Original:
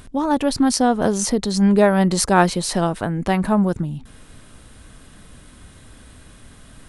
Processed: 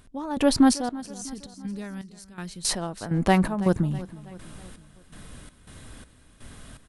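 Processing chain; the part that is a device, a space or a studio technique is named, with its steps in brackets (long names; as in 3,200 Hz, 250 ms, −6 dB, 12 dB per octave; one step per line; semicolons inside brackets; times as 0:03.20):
0:00.89–0:02.65: guitar amp tone stack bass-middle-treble 6-0-2
trance gate with a delay (gate pattern "..xx..xx.xx" 82 BPM −12 dB; repeating echo 325 ms, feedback 51%, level −18 dB)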